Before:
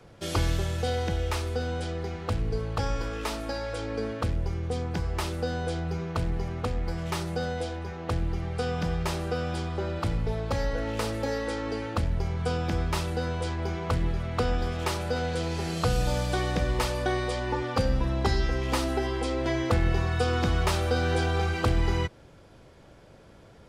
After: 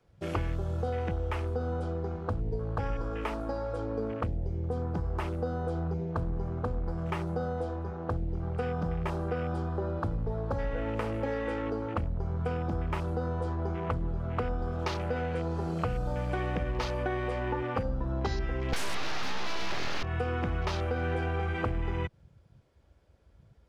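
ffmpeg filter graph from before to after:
ffmpeg -i in.wav -filter_complex "[0:a]asettb=1/sr,asplit=3[link_01][link_02][link_03];[link_01]atrim=end=18.734[link_04];[link_02]atrim=start=18.73:end=20.03,asetpts=PTS-STARTPTS,afade=type=in:duration=0.004:curve=qsin,afade=type=out:start_time=1.296:duration=0.004:curve=qsin,asplit=2[link_05][link_06];[link_06]highpass=frequency=720:poles=1,volume=35dB,asoftclip=type=tanh:threshold=-12dB[link_07];[link_05][link_07]amix=inputs=2:normalize=0,lowpass=frequency=2900:poles=1,volume=-6dB,aeval=exprs='abs(val(0))':channel_layout=same[link_08];[link_03]atrim=start=20.026[link_09];[link_04][link_08]acrossfade=duration=0.004:curve1=hsin:curve2=qsin[link_10];[link_10][link_09]acrossfade=duration=0.004:curve1=qsin:curve2=hsin,afwtdn=0.0141,acompressor=threshold=-27dB:ratio=6" out.wav

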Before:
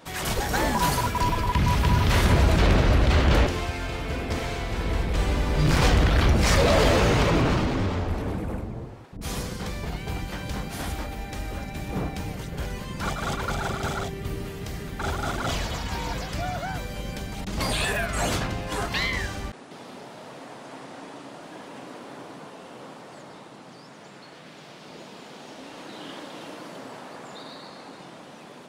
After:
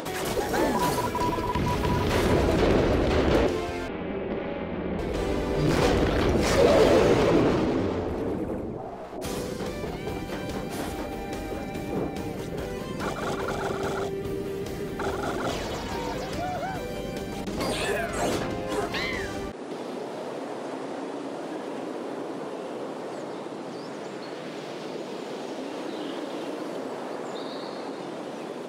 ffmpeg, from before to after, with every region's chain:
ffmpeg -i in.wav -filter_complex "[0:a]asettb=1/sr,asplit=3[link_01][link_02][link_03];[link_01]atrim=end=3.884[link_04];[link_02]atrim=start=3.88:end=4.99,asetpts=PTS-STARTPTS,afade=type=in:duration=0.004:curve=qsin,afade=type=out:start_time=1.106:duration=0.004:curve=qsin,lowpass=frequency=3100:width=0.5412,lowpass=frequency=3100:width=1.3066,aeval=exprs='val(0)*sin(2*PI*130*n/s)':channel_layout=same[link_05];[link_03]atrim=start=4.986[link_06];[link_04][link_05]acrossfade=duration=0.004:curve1=hsin:curve2=qsin[link_07];[link_07][link_06]acrossfade=duration=0.004:curve1=qsin:curve2=hsin,asettb=1/sr,asplit=3[link_08][link_09][link_10];[link_08]atrim=end=8.774[link_11];[link_09]atrim=start=8.77:end=9.24,asetpts=PTS-STARTPTS,afade=type=in:duration=0.004:curve=qsin,afade=type=out:start_time=0.466:duration=0.004:curve=qsin,lowshelf=frequency=250:width_type=q:width=3:gain=-9,asplit=2[link_12][link_13];[link_13]adelay=16,volume=-2dB[link_14];[link_12][link_14]amix=inputs=2:normalize=0,atrim=end_sample=20727,aeval=exprs='val(0)*sin(2*PI*320*n/s)':channel_layout=same[link_15];[link_10]atrim=start=9.236[link_16];[link_11][link_15]acrossfade=duration=0.004:curve1=hsin:curve2=qsin[link_17];[link_17][link_16]acrossfade=duration=0.004:curve1=qsin:curve2=hsin,equalizer=frequency=390:width_type=o:width=1.6:gain=11,acompressor=mode=upward:threshold=-20dB:ratio=2.5,lowshelf=frequency=94:gain=-7.5,volume=-5dB" out.wav

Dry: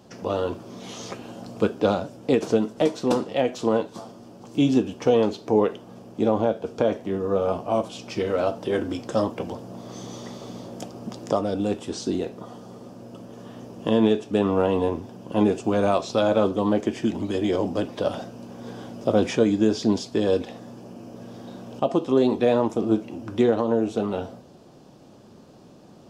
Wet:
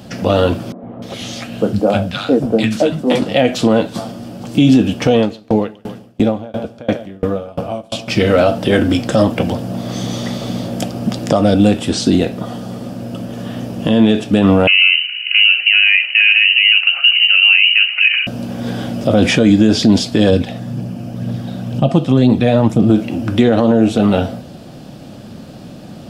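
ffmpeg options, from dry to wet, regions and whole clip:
ffmpeg -i in.wav -filter_complex "[0:a]asettb=1/sr,asplit=3[link_01][link_02][link_03];[link_01]atrim=end=0.724[link_04];[link_02]atrim=start=0.72:end=3.22,asetpts=PTS-STARTPTS,afade=type=in:duration=0.004:curve=qsin,afade=type=out:start_time=2.496:duration=0.004:curve=qsin,flanger=delay=4.5:depth=8.5:regen=-62:speed=1.5:shape=triangular,acrossover=split=210|1100[link_05][link_06][link_07];[link_05]adelay=110[link_08];[link_07]adelay=300[link_09];[link_08][link_06][link_09]amix=inputs=3:normalize=0,atrim=end_sample=110250[link_10];[link_03]atrim=start=3.216[link_11];[link_04][link_10]acrossfade=duration=0.004:curve1=hsin:curve2=qsin[link_12];[link_12][link_11]acrossfade=duration=0.004:curve1=qsin:curve2=hsin,asettb=1/sr,asplit=3[link_13][link_14][link_15];[link_13]atrim=end=5.164[link_16];[link_14]atrim=start=5.16:end=8.08,asetpts=PTS-STARTPTS,afade=type=in:duration=0.004:curve=qsin,afade=type=out:start_time=2.916:duration=0.004:curve=qsin,acompressor=mode=upward:threshold=-34dB:ratio=2.5:attack=3.2:release=140:knee=2.83:detection=peak,aecho=1:1:143|286|429|572|715:0.224|0.105|0.0495|0.0232|0.0109,atrim=end_sample=128772,aeval=exprs='val(0)*pow(10,-30*if(lt(mod(2.9*n/s,1),2*abs(2.9)/1000),1-mod(2.9*n/s,1)/(2*abs(2.9)/1000),(mod(2.9*n/s,1)-2*abs(2.9)/1000)/(1-2*abs(2.9)/1000))/20)':channel_layout=same[link_17];[link_15]atrim=start=8.076[link_18];[link_16][link_17]acrossfade=duration=0.004:curve1=hsin:curve2=qsin[link_19];[link_19][link_18]acrossfade=duration=0.004:curve1=qsin:curve2=hsin,asettb=1/sr,asplit=3[link_20][link_21][link_22];[link_20]atrim=end=14.674[link_23];[link_21]atrim=start=14.67:end=18.27,asetpts=PTS-STARTPTS,afade=type=in:duration=0.004:curve=qsin,afade=type=out:start_time=3.596:duration=0.004:curve=qsin,lowpass=frequency=2600:width_type=q:width=0.5098,lowpass=frequency=2600:width_type=q:width=0.6013,lowpass=frequency=2600:width_type=q:width=0.9,lowpass=frequency=2600:width_type=q:width=2.563,afreqshift=-3100,highpass=1000[link_24];[link_22]atrim=start=18.266[link_25];[link_23][link_24]acrossfade=duration=0.004:curve1=hsin:curve2=qsin[link_26];[link_26][link_25]acrossfade=duration=0.004:curve1=qsin:curve2=hsin,asettb=1/sr,asplit=3[link_27][link_28][link_29];[link_27]atrim=end=20.304[link_30];[link_28]atrim=start=20.3:end=22.9,asetpts=PTS-STARTPTS,afade=type=in:duration=0.004:curve=qsin,afade=type=out:start_time=2.596:duration=0.004:curve=qsin,equalizer=frequency=140:width_type=o:width=0.83:gain=10.5,flanger=delay=0:depth=1.7:regen=68:speed=2:shape=triangular[link_31];[link_29]atrim=start=22.896[link_32];[link_30][link_31]acrossfade=duration=0.004:curve1=hsin:curve2=qsin[link_33];[link_33][link_32]acrossfade=duration=0.004:curve1=qsin:curve2=hsin,equalizer=frequency=400:width_type=o:width=0.67:gain=-10,equalizer=frequency=1000:width_type=o:width=0.67:gain=-10,equalizer=frequency=6300:width_type=o:width=0.67:gain=-7,alimiter=level_in=19.5dB:limit=-1dB:release=50:level=0:latency=1,volume=-1dB" out.wav

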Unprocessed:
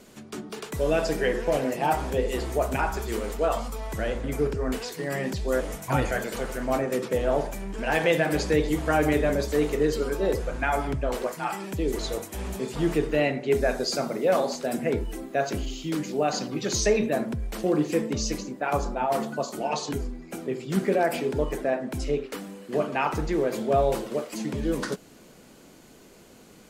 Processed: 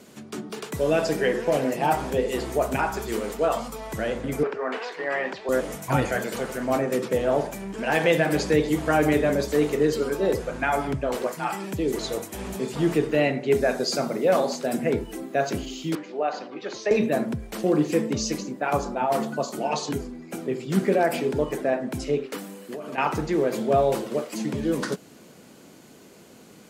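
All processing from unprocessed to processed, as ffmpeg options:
ffmpeg -i in.wav -filter_complex "[0:a]asettb=1/sr,asplit=3[link_01][link_02][link_03];[link_01]atrim=end=4.434[link_04];[link_02]atrim=start=4.43:end=5.49,asetpts=PTS-STARTPTS,afade=type=in:duration=0.004:curve=qsin,afade=type=out:start_time=1.056:duration=0.004:curve=qsin,acontrast=62,highpass=650,lowpass=2300[link_05];[link_03]atrim=start=5.486[link_06];[link_04][link_05]acrossfade=duration=0.004:curve1=hsin:curve2=qsin[link_07];[link_07][link_06]acrossfade=duration=0.004:curve1=qsin:curve2=hsin,asettb=1/sr,asplit=3[link_08][link_09][link_10];[link_08]atrim=end=15.954[link_11];[link_09]atrim=start=15.95:end=16.91,asetpts=PTS-STARTPTS,afade=type=in:duration=0.004:curve=qsin,afade=type=out:start_time=0.956:duration=0.004:curve=qsin,highpass=500,lowpass=4100,highshelf=frequency=2900:gain=-10.5[link_12];[link_10]atrim=start=16.906[link_13];[link_11][link_12]acrossfade=duration=0.004:curve1=hsin:curve2=qsin[link_14];[link_14][link_13]acrossfade=duration=0.004:curve1=qsin:curve2=hsin,asettb=1/sr,asplit=3[link_15][link_16][link_17];[link_15]atrim=end=22.384[link_18];[link_16]atrim=start=22.38:end=22.98,asetpts=PTS-STARTPTS,afade=type=in:duration=0.004:curve=qsin,afade=type=out:start_time=0.596:duration=0.004:curve=qsin,highpass=frequency=210:poles=1,highshelf=frequency=9900:gain=11,acompressor=threshold=-32dB:ratio=16:attack=3.2:release=140:knee=1:detection=peak[link_19];[link_17]atrim=start=22.976[link_20];[link_18][link_19]acrossfade=duration=0.004:curve1=hsin:curve2=qsin[link_21];[link_21][link_20]acrossfade=duration=0.004:curve1=qsin:curve2=hsin,highpass=120,lowshelf=frequency=170:gain=4.5,volume=1.5dB" out.wav

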